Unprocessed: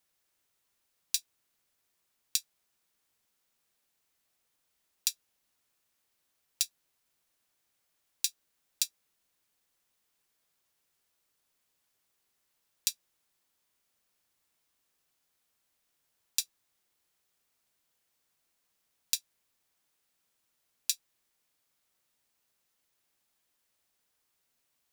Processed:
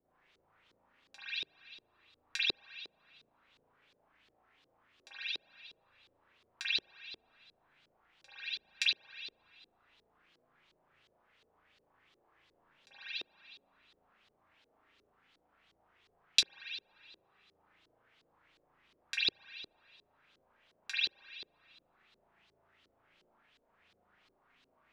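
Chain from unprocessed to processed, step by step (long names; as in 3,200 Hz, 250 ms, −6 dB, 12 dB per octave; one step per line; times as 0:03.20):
spring reverb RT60 1.4 s, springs 36 ms, chirp 40 ms, DRR −5 dB
auto-filter low-pass saw up 2.8 Hz 380–4,400 Hz
level +6.5 dB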